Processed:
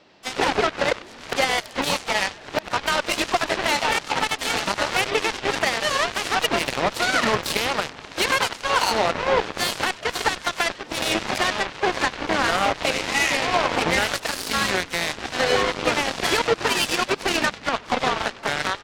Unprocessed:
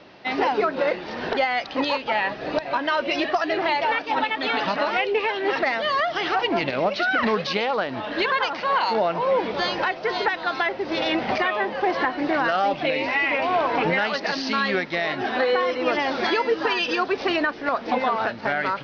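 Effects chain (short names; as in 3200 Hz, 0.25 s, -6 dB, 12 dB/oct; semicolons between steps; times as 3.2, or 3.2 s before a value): high shelf 4500 Hz +9 dB; on a send: frequency-shifting echo 96 ms, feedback 49%, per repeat -98 Hz, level -9 dB; on the sum: added harmonics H 7 -14 dB, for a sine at -9 dBFS; harmoniser +5 st -16 dB, +7 st -15 dB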